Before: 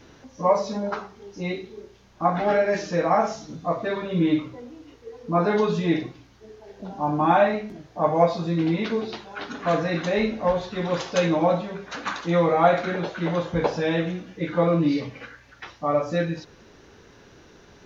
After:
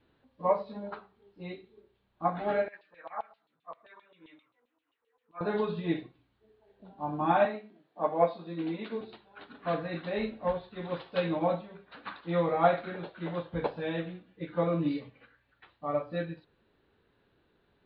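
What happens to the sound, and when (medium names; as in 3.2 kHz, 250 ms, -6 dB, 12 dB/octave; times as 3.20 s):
2.68–5.41 s: LFO band-pass saw down 7.6 Hz 850–3400 Hz
7.45–9.01 s: high-pass 190 Hz 24 dB/octave
whole clip: steep low-pass 4.3 kHz 72 dB/octave; band-stop 2.1 kHz, Q 28; upward expansion 1.5:1, over -41 dBFS; trim -5 dB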